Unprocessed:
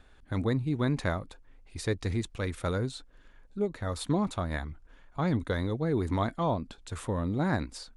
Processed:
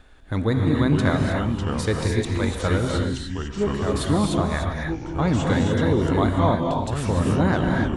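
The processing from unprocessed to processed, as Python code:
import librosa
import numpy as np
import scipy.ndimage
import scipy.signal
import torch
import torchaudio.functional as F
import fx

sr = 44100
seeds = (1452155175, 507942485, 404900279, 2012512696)

y = fx.tape_stop_end(x, sr, length_s=0.44)
y = fx.echo_pitch(y, sr, ms=342, semitones=-4, count=2, db_per_echo=-6.0)
y = fx.rev_gated(y, sr, seeds[0], gate_ms=320, shape='rising', drr_db=0.5)
y = y * 10.0 ** (6.0 / 20.0)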